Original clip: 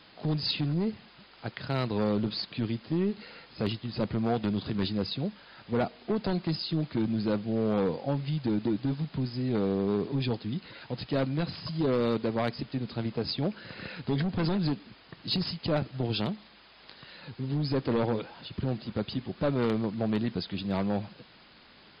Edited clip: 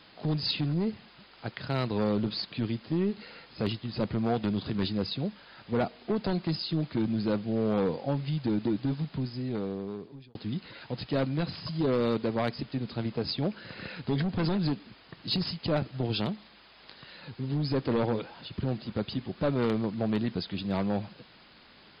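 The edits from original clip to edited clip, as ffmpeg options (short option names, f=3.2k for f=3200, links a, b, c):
-filter_complex "[0:a]asplit=2[a][b];[a]atrim=end=10.35,asetpts=PTS-STARTPTS,afade=t=out:st=9.03:d=1.32[c];[b]atrim=start=10.35,asetpts=PTS-STARTPTS,afade=t=in:d=0.004:c=hsin[d];[c][d]concat=n=2:v=0:a=1"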